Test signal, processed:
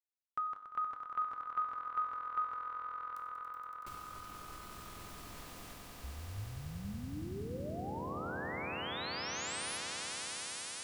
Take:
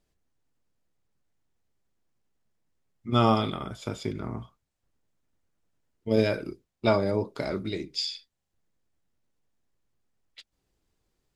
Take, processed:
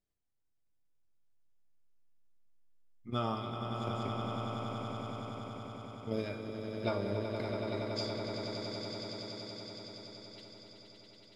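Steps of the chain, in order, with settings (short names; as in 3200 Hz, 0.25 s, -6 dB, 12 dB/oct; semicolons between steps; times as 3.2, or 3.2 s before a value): transient shaper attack +5 dB, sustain -2 dB; resonator 100 Hz, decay 0.66 s, harmonics all, mix 70%; on a send: swelling echo 94 ms, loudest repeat 8, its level -8 dB; on the sum: gain -6 dB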